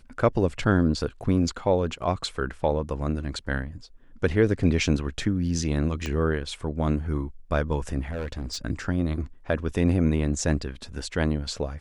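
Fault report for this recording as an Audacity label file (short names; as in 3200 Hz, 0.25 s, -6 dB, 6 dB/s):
6.060000	6.060000	pop -17 dBFS
8.000000	8.580000	clipped -27 dBFS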